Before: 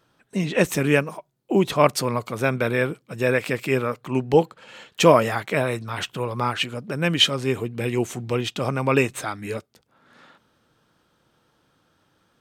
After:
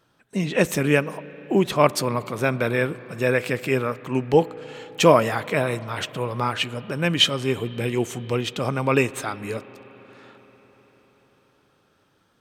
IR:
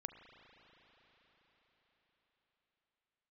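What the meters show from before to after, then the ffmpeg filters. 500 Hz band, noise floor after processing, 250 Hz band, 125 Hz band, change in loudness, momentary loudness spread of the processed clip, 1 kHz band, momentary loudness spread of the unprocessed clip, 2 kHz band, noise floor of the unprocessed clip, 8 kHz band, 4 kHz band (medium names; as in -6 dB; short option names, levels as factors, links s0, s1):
0.0 dB, -64 dBFS, 0.0 dB, 0.0 dB, 0.0 dB, 12 LU, 0.0 dB, 11 LU, 0.0 dB, -67 dBFS, 0.0 dB, 0.0 dB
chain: -filter_complex "[0:a]asplit=2[s0][s1];[1:a]atrim=start_sample=2205[s2];[s1][s2]afir=irnorm=-1:irlink=0,volume=0.631[s3];[s0][s3]amix=inputs=2:normalize=0,volume=0.708"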